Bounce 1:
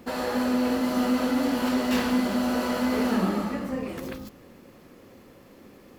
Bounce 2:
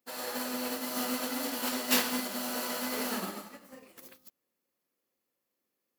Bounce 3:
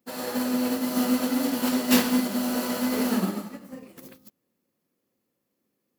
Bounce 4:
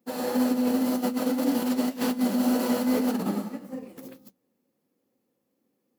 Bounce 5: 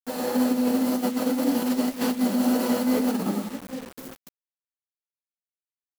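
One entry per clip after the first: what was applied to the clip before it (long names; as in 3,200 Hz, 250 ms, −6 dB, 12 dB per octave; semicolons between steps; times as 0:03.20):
RIAA equalisation recording; expander for the loud parts 2.5 to 1, over −45 dBFS
parametric band 150 Hz +14 dB 2.8 octaves; level +2 dB
compressor whose output falls as the input rises −26 dBFS, ratio −0.5; flanger 1.9 Hz, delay 5 ms, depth 6.9 ms, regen −58%; hollow resonant body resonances 260/490/780 Hz, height 7 dB, ringing for 20 ms
bit reduction 7 bits; level +1.5 dB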